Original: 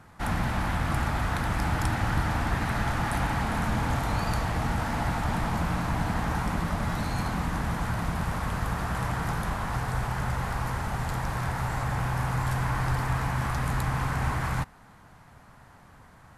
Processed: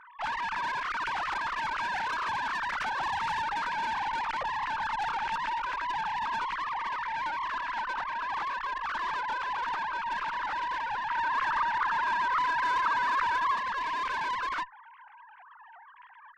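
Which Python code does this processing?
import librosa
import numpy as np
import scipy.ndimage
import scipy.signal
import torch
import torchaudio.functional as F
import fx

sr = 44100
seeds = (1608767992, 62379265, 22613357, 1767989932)

y = fx.sine_speech(x, sr)
y = fx.tube_stage(y, sr, drive_db=28.0, bias=0.4)
y = fx.peak_eq(y, sr, hz=1300.0, db=9.5, octaves=0.6, at=(11.09, 13.56))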